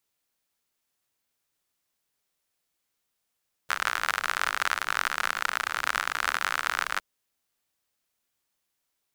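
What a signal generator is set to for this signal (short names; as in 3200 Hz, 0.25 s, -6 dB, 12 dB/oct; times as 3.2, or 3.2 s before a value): rain from filtered ticks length 3.31 s, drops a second 60, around 1400 Hz, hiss -23.5 dB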